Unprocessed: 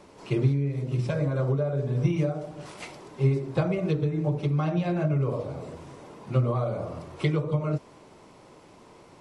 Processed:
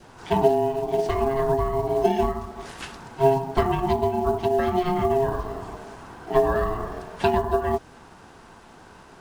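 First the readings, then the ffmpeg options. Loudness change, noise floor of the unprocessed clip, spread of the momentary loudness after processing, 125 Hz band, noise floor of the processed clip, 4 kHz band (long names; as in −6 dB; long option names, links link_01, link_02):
+3.5 dB, −52 dBFS, 16 LU, −7.0 dB, −49 dBFS, +6.0 dB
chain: -af "acrusher=bits=8:mode=log:mix=0:aa=0.000001,aeval=exprs='val(0)*sin(2*PI*540*n/s)':channel_layout=same,adynamicequalizer=threshold=0.00562:dfrequency=1100:dqfactor=1.7:tfrequency=1100:tqfactor=1.7:attack=5:release=100:ratio=0.375:range=2.5:mode=cutabove:tftype=bell,volume=7dB"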